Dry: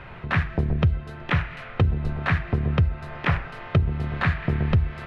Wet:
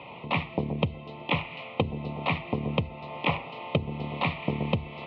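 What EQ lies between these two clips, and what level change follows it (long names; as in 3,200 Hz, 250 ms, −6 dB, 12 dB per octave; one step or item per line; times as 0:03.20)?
Butterworth band-reject 1,600 Hz, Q 1.2
loudspeaker in its box 290–3,400 Hz, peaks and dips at 380 Hz −9 dB, 670 Hz −5 dB, 1,300 Hz −6 dB
+6.0 dB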